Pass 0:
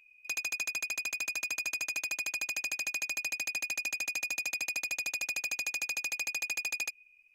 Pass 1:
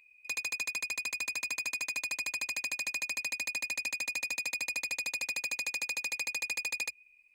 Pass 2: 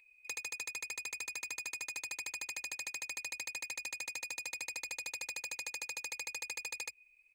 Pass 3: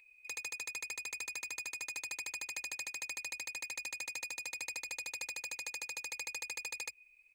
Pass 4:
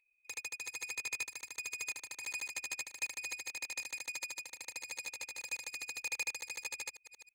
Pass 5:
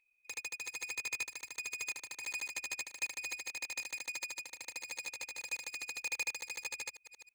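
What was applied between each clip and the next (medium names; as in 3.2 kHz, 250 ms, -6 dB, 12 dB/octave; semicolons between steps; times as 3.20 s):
rippled EQ curve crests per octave 0.97, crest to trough 9 dB
comb 2.3 ms, depth 68%; compression, threshold -35 dBFS, peak gain reduction 5 dB; trim -2.5 dB
peak limiter -30 dBFS, peak gain reduction 4.5 dB; trim +2 dB
chunks repeated in reverse 317 ms, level -5 dB; upward expansion 2.5:1, over -50 dBFS; trim +4.5 dB
median filter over 3 samples; trim +1 dB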